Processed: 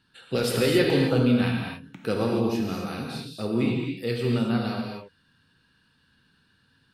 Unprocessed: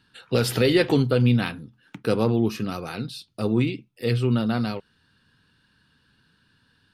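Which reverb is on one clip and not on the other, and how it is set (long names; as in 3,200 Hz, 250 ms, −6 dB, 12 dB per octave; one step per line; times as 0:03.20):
reverb whose tail is shaped and stops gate 300 ms flat, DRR −1 dB
level −4.5 dB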